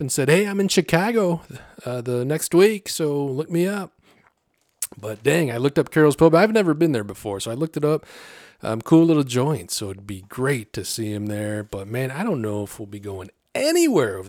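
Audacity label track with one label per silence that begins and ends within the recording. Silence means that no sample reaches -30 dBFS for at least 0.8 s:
3.860000	4.820000	silence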